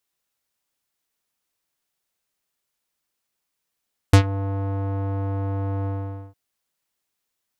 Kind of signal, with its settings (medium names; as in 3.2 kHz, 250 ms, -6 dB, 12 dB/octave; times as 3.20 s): synth note square G2 12 dB/octave, low-pass 900 Hz, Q 1.1, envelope 4 oct, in 0.14 s, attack 5.6 ms, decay 0.09 s, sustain -17.5 dB, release 0.48 s, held 1.73 s